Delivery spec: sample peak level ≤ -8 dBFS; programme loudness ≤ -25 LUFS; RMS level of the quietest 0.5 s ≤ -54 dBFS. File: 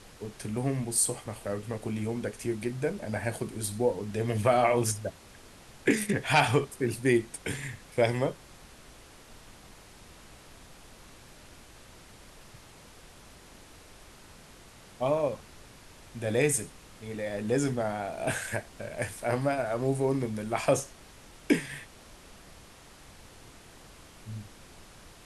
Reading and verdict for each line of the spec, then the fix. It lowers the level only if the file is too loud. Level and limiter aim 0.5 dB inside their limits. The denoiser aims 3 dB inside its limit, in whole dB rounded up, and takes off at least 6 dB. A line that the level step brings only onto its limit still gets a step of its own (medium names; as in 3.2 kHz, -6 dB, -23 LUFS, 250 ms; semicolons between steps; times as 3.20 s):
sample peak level -9.5 dBFS: pass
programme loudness -29.5 LUFS: pass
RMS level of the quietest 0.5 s -52 dBFS: fail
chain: noise reduction 6 dB, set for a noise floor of -52 dBFS